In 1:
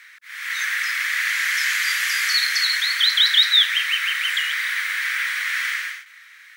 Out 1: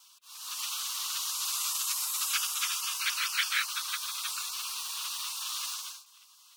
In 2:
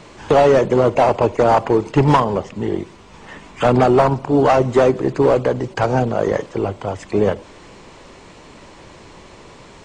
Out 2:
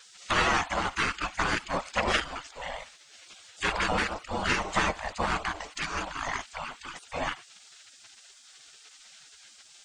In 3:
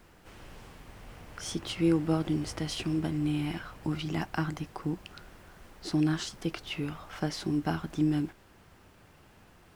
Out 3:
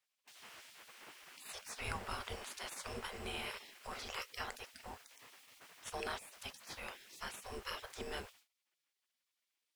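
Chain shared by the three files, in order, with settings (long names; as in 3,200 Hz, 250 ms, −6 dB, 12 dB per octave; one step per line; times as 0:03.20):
noise gate with hold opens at −42 dBFS
gate on every frequency bin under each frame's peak −20 dB weak
level +1.5 dB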